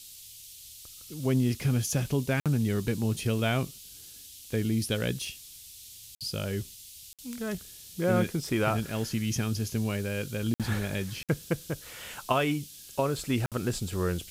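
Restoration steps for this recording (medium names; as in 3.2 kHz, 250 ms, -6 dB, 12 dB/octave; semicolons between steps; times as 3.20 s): interpolate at 2.40/6.15/7.13/10.54/11.23/13.46 s, 57 ms; noise print and reduce 27 dB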